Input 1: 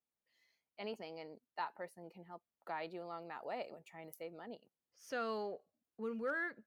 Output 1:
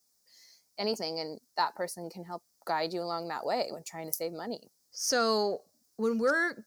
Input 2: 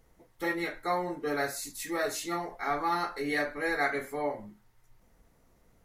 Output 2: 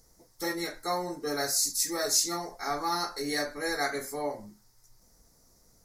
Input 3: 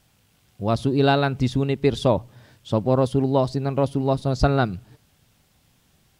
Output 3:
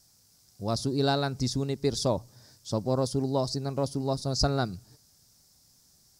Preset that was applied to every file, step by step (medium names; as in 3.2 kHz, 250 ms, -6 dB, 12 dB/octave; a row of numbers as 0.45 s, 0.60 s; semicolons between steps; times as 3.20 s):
resonant high shelf 3.9 kHz +10 dB, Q 3; peak normalisation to -12 dBFS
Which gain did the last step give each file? +12.5 dB, -0.5 dB, -7.5 dB